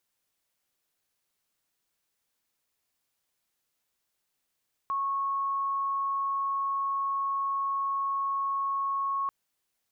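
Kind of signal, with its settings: tone sine 1100 Hz -26.5 dBFS 4.39 s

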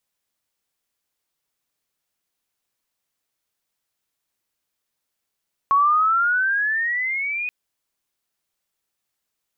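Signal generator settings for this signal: chirp logarithmic 1100 Hz -> 2500 Hz -13 dBFS -> -23.5 dBFS 1.78 s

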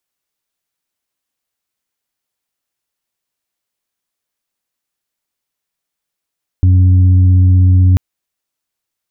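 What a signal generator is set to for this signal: steady additive tone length 1.34 s, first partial 91.6 Hz, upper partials -19.5/-17 dB, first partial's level -5 dB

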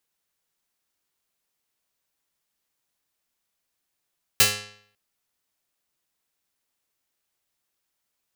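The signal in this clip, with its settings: plucked string G#2, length 0.55 s, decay 0.63 s, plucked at 0.33, medium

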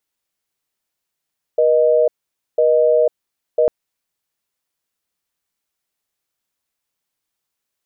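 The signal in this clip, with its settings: call progress tone busy tone, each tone -13.5 dBFS 2.10 s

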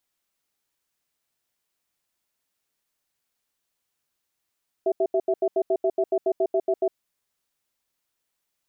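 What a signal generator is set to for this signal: cadence 383 Hz, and 660 Hz, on 0.06 s, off 0.08 s, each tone -21.5 dBFS 2.09 s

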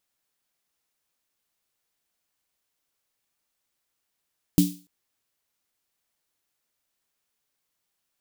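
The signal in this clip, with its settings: snare drum length 0.29 s, tones 180 Hz, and 290 Hz, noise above 3200 Hz, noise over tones -11 dB, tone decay 0.32 s, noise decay 0.38 s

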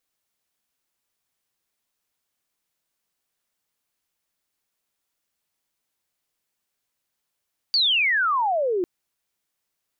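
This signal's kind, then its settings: chirp logarithmic 4700 Hz -> 340 Hz -16.5 dBFS -> -20.5 dBFS 1.10 s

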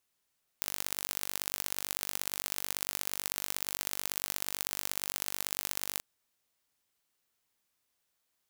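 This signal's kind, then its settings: pulse train 48.9/s, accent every 3, -4.5 dBFS 5.38 s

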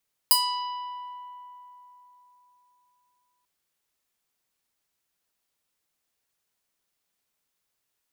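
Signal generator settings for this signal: plucked string B5, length 3.14 s, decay 3.78 s, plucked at 0.49, bright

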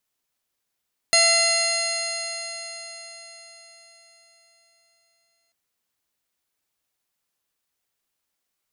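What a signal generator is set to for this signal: stretched partials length 4.39 s, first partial 672 Hz, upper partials -8/0/-3/-14.5/5/-5.5/-18/1/-18/-11.5/-2/-18 dB, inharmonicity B 0.0025, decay 4.63 s, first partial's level -22 dB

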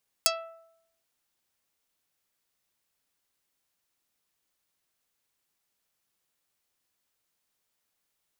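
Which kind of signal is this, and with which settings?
plucked string E5, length 0.78 s, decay 0.79 s, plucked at 0.34, dark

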